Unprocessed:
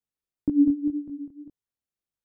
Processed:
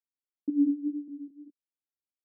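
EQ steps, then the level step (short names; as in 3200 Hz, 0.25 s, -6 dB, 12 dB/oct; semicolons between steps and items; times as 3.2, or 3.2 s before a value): ladder band-pass 320 Hz, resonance 55%; -1.5 dB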